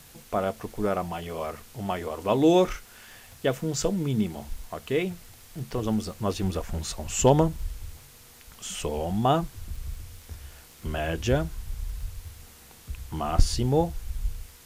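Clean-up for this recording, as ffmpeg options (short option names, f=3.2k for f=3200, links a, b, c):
-af "adeclick=t=4,afftdn=nr=21:nf=-50"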